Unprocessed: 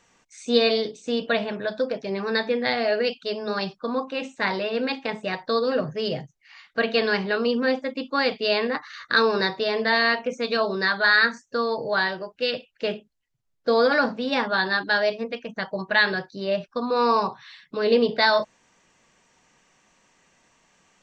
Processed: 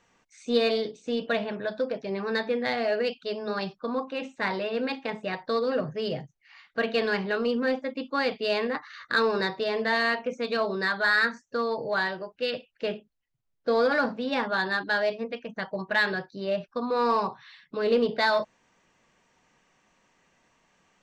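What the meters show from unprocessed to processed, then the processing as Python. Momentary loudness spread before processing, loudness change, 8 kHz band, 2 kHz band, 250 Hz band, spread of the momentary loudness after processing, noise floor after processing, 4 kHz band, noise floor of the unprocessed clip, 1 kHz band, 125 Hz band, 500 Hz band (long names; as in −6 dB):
10 LU, −4.0 dB, can't be measured, −4.5 dB, −3.0 dB, 9 LU, −73 dBFS, −6.5 dB, −69 dBFS, −3.5 dB, −3.0 dB, −3.5 dB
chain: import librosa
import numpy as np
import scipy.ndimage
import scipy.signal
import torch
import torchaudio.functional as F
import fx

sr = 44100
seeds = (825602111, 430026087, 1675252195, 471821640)

p1 = fx.lowpass(x, sr, hz=3700.0, slope=6)
p2 = np.clip(10.0 ** (20.5 / 20.0) * p1, -1.0, 1.0) / 10.0 ** (20.5 / 20.0)
p3 = p1 + (p2 * 10.0 ** (-11.0 / 20.0))
y = p3 * 10.0 ** (-5.0 / 20.0)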